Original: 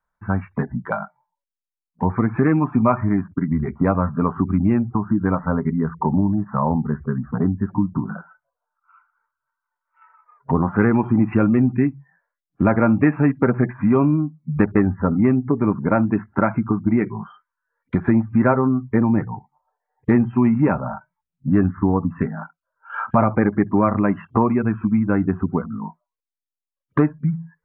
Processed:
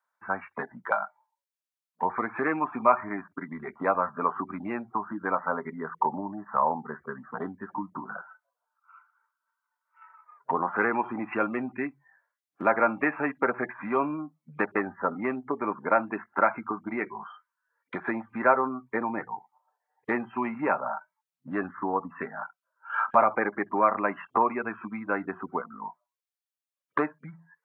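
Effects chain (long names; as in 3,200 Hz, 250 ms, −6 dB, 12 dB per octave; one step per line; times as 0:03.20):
high-pass filter 630 Hz 12 dB per octave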